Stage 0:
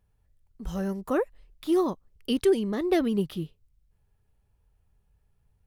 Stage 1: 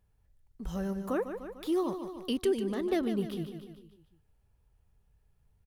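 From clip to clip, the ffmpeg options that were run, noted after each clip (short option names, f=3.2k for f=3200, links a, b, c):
-filter_complex "[0:a]aecho=1:1:149|298|447|596|745:0.299|0.146|0.0717|0.0351|0.0172,asplit=2[a][b];[b]acompressor=threshold=-33dB:ratio=6,volume=2.5dB[c];[a][c]amix=inputs=2:normalize=0,volume=-8.5dB"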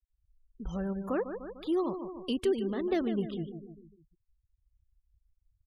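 -af "afftfilt=real='re*gte(hypot(re,im),0.00501)':imag='im*gte(hypot(re,im),0.00501)':win_size=1024:overlap=0.75,highshelf=f=9.4k:g=-9.5"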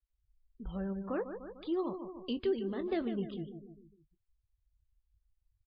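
-filter_complex "[0:a]asplit=2[a][b];[b]adelay=21,volume=-13dB[c];[a][c]amix=inputs=2:normalize=0,volume=-4dB" -ar 11025 -c:a libmp3lame -b:a 32k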